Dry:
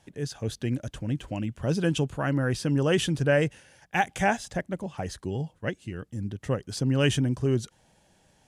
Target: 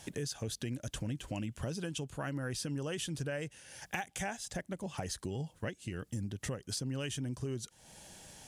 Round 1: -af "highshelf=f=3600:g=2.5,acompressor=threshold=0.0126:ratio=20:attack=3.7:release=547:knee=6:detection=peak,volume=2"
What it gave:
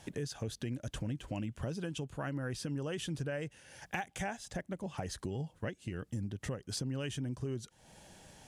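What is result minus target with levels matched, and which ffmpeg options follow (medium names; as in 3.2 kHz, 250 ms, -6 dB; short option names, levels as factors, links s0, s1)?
8 kHz band -4.5 dB
-af "highshelf=f=3600:g=11,acompressor=threshold=0.0126:ratio=20:attack=3.7:release=547:knee=6:detection=peak,volume=2"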